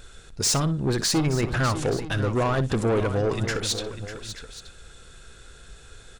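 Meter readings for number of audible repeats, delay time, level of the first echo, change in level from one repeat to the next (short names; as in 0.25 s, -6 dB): 3, 60 ms, -15.0 dB, no steady repeat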